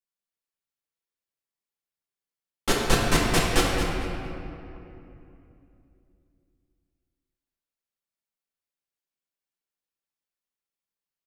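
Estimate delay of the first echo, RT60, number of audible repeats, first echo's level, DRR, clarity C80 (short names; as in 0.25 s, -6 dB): 0.225 s, 2.9 s, 1, -8.5 dB, -5.5 dB, 0.0 dB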